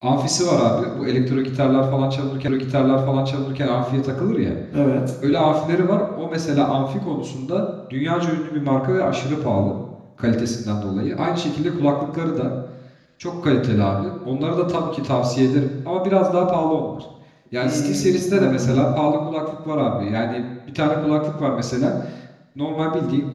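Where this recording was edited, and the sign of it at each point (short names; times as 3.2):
2.48 repeat of the last 1.15 s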